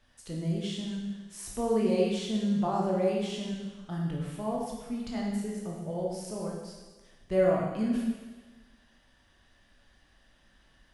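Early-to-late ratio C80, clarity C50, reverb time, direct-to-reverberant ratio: 3.0 dB, 0.5 dB, 1.3 s, −3.0 dB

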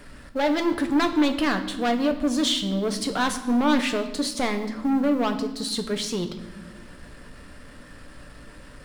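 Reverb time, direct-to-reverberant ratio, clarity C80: non-exponential decay, 5.5 dB, 12.5 dB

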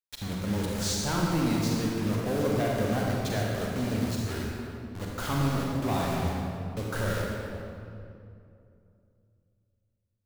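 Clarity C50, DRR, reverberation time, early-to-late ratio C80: −2.0 dB, −2.5 dB, 2.6 s, 0.0 dB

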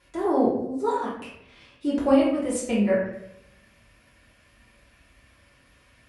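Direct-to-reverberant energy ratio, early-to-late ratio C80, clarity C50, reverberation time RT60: −9.0 dB, 6.5 dB, 2.5 dB, 0.75 s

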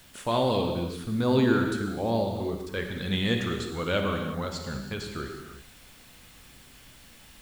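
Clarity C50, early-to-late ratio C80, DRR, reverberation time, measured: 4.0 dB, 5.0 dB, 3.0 dB, non-exponential decay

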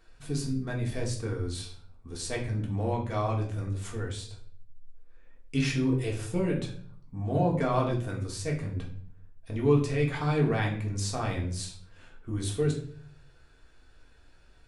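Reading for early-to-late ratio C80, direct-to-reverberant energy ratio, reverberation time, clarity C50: 12.0 dB, −2.0 dB, 0.55 s, 8.0 dB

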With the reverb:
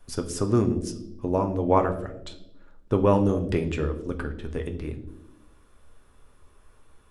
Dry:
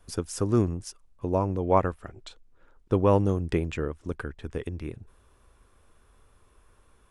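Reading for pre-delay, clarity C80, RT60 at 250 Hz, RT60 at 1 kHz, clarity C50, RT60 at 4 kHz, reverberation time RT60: 3 ms, 15.0 dB, 1.3 s, 0.65 s, 12.0 dB, 0.60 s, 0.85 s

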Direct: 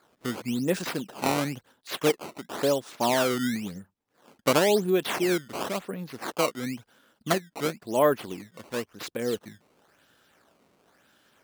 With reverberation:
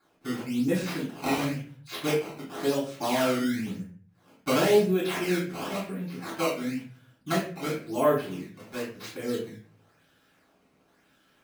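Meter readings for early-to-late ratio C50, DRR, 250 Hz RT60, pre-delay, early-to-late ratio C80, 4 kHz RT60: 5.5 dB, −7.5 dB, 0.65 s, 3 ms, 9.5 dB, 0.35 s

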